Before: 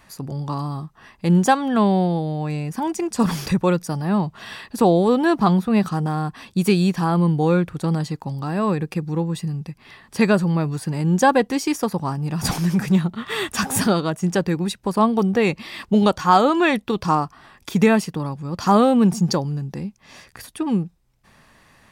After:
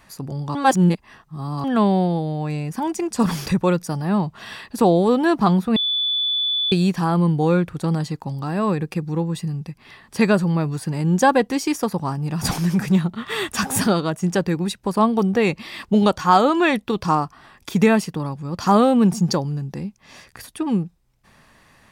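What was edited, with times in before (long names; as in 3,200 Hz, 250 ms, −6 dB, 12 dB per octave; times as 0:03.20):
0:00.55–0:01.64: reverse
0:05.76–0:06.72: beep over 3,470 Hz −18.5 dBFS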